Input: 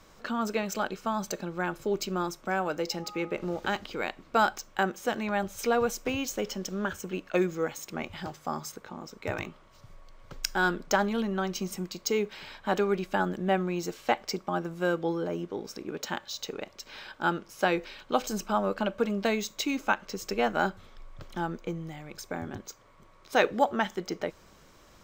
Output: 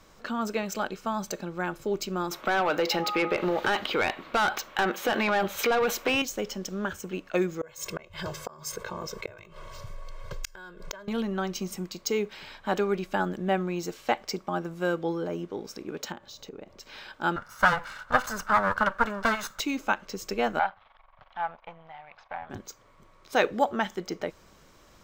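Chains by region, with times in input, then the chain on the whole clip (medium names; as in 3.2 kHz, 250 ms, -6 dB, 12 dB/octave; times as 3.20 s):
2.31–6.22 s: high-order bell 6.9 kHz -9.5 dB 1.2 oct + overdrive pedal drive 21 dB, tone 6.1 kHz, clips at -11 dBFS + compression, threshold -21 dBFS
7.61–11.08 s: comb 1.9 ms, depth 99% + inverted gate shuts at -22 dBFS, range -35 dB + level flattener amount 50%
16.12–16.81 s: tilt shelf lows +6 dB, about 930 Hz + compression 2.5:1, threshold -42 dBFS
17.36–19.60 s: comb filter that takes the minimum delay 1.4 ms + high-order bell 1.3 kHz +13.5 dB 1.1 oct
20.59–22.50 s: partial rectifier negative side -12 dB + low-pass 3.3 kHz 24 dB/octave + resonant low shelf 520 Hz -13.5 dB, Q 3
whole clip: none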